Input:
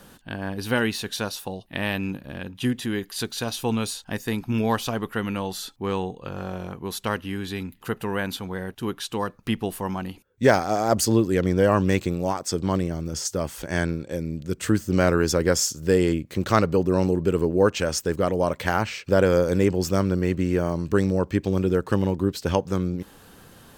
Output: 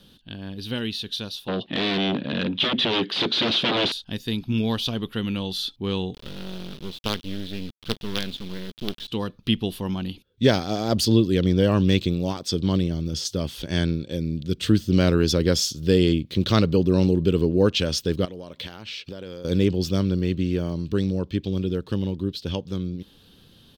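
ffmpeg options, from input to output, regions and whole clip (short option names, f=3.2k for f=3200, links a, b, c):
-filter_complex "[0:a]asettb=1/sr,asplit=3[a][b][c];[a]atrim=end=1.484[d];[b]atrim=start=1.48:end=3.92,asetpts=PTS-STARTPTS,afade=t=in:d=0.004:c=qsin,afade=t=out:st=2.436:d=0.004:c=qsin,acompressor=mode=upward:threshold=-47dB:ratio=2.5:attack=3.2:release=140:knee=2.83:detection=peak,aeval=exprs='0.266*sin(PI/2*8.91*val(0)/0.266)':c=same,highpass=260,lowpass=2.3k[e];[c]atrim=start=3.916[f];[d][e]acrossfade=d=0.004:c1=hsin:c2=qsin[g];[g][f]acrossfade=d=0.004:c1=qsin:c2=hsin,asettb=1/sr,asplit=3[h][i][j];[h]atrim=end=6.144[k];[i]atrim=start=6.14:end=9.08,asetpts=PTS-STARTPTS,afade=t=in:d=0.004:c=qsin,afade=t=out:st=2.936:d=0.004:c=qsin,lowpass=2.7k,acrusher=bits=4:dc=4:mix=0:aa=0.000001[l];[j]atrim=start=9.076[m];[k][l]acrossfade=d=0.004:c1=hsin:c2=qsin[n];[n][m]acrossfade=d=0.004:c1=qsin:c2=hsin,asettb=1/sr,asplit=3[o][p][q];[o]atrim=end=18.254[r];[p]atrim=start=18.25:end=19.45,asetpts=PTS-STARTPTS,afade=t=in:d=0.004:c=qsin,afade=t=out:st=1.196:d=0.004:c=qsin,lowshelf=f=180:g=-8.5,acompressor=threshold=-34dB:ratio=4:attack=3.2:release=140:knee=1:detection=peak[s];[q]atrim=start=19.446[t];[r][s]acrossfade=d=0.004:c1=hsin:c2=qsin[u];[u][t]acrossfade=d=0.004:c1=qsin:c2=hsin,firequalizer=gain_entry='entry(210,0);entry(770,-11);entry(2000,-8);entry(3400,9);entry(7300,-12);entry(10000,-8)':delay=0.05:min_phase=1,dynaudnorm=f=560:g=17:m=11.5dB,volume=-3dB"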